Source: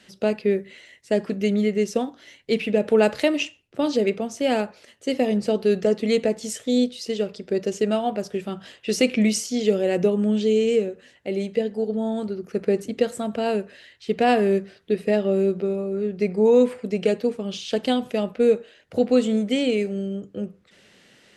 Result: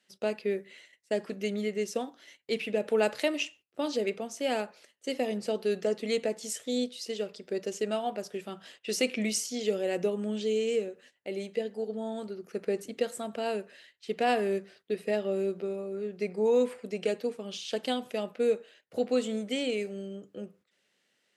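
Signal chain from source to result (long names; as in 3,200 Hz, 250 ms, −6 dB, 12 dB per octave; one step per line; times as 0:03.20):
noise gate −47 dBFS, range −13 dB
high-pass filter 380 Hz 6 dB per octave
high-shelf EQ 9,100 Hz +6.5 dB
level −6 dB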